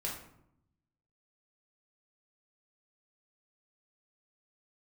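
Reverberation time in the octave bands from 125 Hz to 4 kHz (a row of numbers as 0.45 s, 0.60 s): 1.3 s, 1.1 s, 0.80 s, 0.75 s, 0.55 s, 0.45 s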